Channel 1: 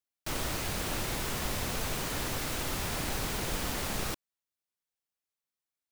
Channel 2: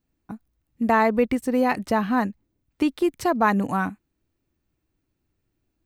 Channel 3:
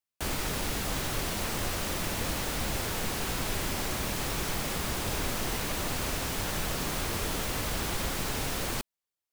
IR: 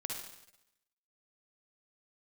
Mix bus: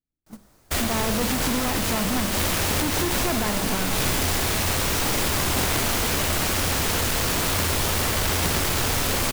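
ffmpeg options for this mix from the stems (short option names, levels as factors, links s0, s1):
-filter_complex "[0:a]equalizer=f=2800:w=1.1:g=-8.5,volume=0.631[s0];[1:a]lowshelf=f=410:g=8.5,volume=13.3,asoftclip=hard,volume=0.075,volume=0.501,asplit=3[s1][s2][s3];[s2]volume=0.631[s4];[2:a]equalizer=f=88:w=6.8:g=13,aeval=exprs='0.158*(cos(1*acos(clip(val(0)/0.158,-1,1)))-cos(1*PI/2))+0.0501*(cos(3*acos(clip(val(0)/0.158,-1,1)))-cos(3*PI/2))+0.0708*(cos(7*acos(clip(val(0)/0.158,-1,1)))-cos(7*PI/2))':c=same,adelay=500,volume=1.12,asplit=2[s5][s6];[s6]volume=0.447[s7];[s3]apad=whole_len=433322[s8];[s5][s8]sidechaincompress=threshold=0.0178:ratio=8:attack=16:release=123[s9];[3:a]atrim=start_sample=2205[s10];[s4][s7]amix=inputs=2:normalize=0[s11];[s11][s10]afir=irnorm=-1:irlink=0[s12];[s0][s1][s9][s12]amix=inputs=4:normalize=0,agate=range=0.112:threshold=0.0398:ratio=16:detection=peak,bandreject=f=50:t=h:w=6,bandreject=f=100:t=h:w=6,bandreject=f=150:t=h:w=6,bandreject=f=200:t=h:w=6"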